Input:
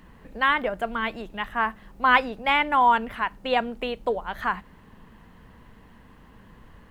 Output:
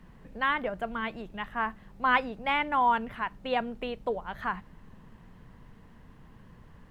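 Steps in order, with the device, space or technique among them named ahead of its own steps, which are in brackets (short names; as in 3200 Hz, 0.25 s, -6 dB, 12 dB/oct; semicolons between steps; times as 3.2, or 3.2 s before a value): car interior (bell 140 Hz +7.5 dB 0.87 oct; high shelf 4600 Hz -6 dB; brown noise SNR 23 dB); gain -5.5 dB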